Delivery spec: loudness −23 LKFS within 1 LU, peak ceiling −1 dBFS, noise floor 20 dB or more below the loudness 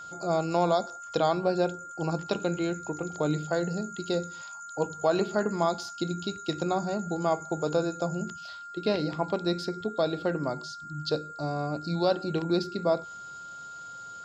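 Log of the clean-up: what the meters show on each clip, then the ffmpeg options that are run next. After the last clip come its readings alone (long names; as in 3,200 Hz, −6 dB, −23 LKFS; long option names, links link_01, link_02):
interfering tone 1,400 Hz; level of the tone −40 dBFS; integrated loudness −29.5 LKFS; sample peak −12.0 dBFS; target loudness −23.0 LKFS
→ -af "bandreject=frequency=1400:width=30"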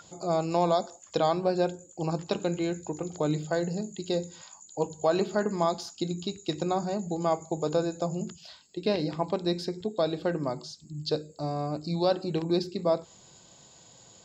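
interfering tone none found; integrated loudness −30.0 LKFS; sample peak −12.5 dBFS; target loudness −23.0 LKFS
→ -af "volume=7dB"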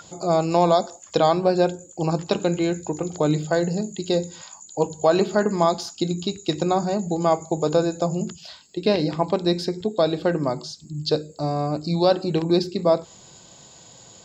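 integrated loudness −23.0 LKFS; sample peak −5.5 dBFS; background noise floor −48 dBFS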